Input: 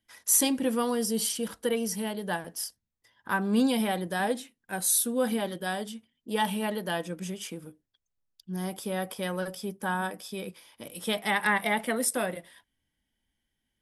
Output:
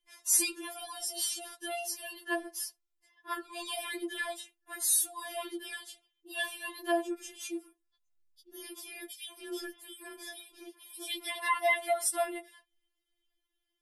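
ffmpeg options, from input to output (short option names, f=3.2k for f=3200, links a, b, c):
-filter_complex "[0:a]asettb=1/sr,asplit=3[a][b][c];[a]atrim=end=9.094[d];[b]atrim=start=9.09:end=11.41,asetpts=PTS-STARTPTS,afade=t=in:d=0.004:c=qsin,afade=t=out:st=2.316:d=0.004:c=qsin,acrossover=split=2200[e][f];[e]adelay=200[g];[g][f]amix=inputs=2:normalize=0,atrim=end_sample=102312[h];[c]atrim=start=11.406[i];[d][h]acrossfade=d=0.004:c1=hsin:c2=qsin[j];[j][i]acrossfade=d=0.004:c1=qsin:c2=hsin,afftfilt=real='re*4*eq(mod(b,16),0)':imag='im*4*eq(mod(b,16),0)':win_size=2048:overlap=0.75"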